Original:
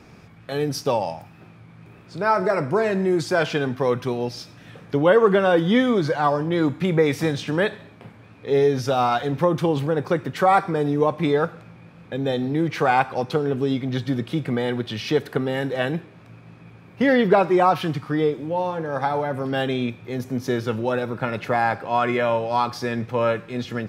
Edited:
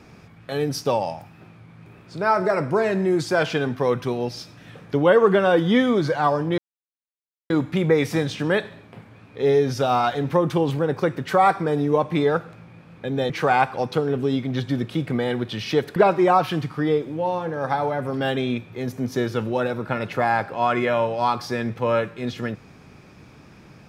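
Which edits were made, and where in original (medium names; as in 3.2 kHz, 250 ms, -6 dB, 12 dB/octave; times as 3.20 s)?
6.58 s: insert silence 0.92 s
12.38–12.68 s: delete
15.34–17.28 s: delete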